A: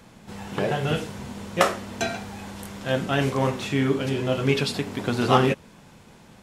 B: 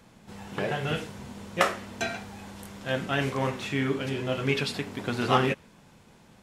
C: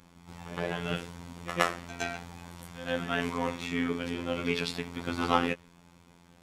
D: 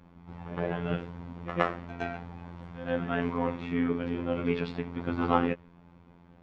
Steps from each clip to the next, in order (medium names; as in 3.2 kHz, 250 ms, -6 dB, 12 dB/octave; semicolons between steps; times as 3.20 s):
dynamic bell 2 kHz, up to +5 dB, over -38 dBFS, Q 0.96; trim -5.5 dB
robot voice 86.3 Hz; reverse echo 115 ms -12 dB; trim -1 dB
tape spacing loss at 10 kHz 41 dB; trim +4 dB